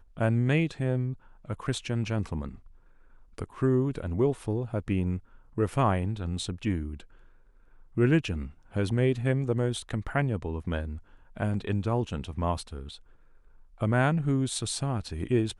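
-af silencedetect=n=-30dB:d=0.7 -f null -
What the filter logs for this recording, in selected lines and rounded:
silence_start: 2.49
silence_end: 3.38 | silence_duration: 0.89
silence_start: 6.93
silence_end: 7.97 | silence_duration: 1.04
silence_start: 12.80
silence_end: 13.82 | silence_duration: 1.02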